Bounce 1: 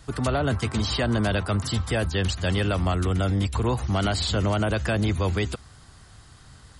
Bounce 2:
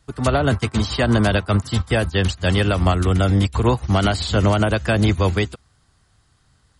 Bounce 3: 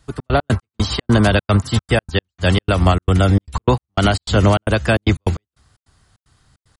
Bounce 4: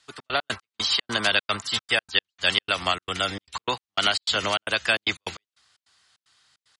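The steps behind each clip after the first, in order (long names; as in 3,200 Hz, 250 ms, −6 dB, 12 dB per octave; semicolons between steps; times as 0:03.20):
expander for the loud parts 2.5 to 1, over −34 dBFS; level +9 dB
gate pattern "xx.x.x..xx.xxx.x" 151 BPM −60 dB; level +3.5 dB
resonant band-pass 3,600 Hz, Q 0.87; level +3 dB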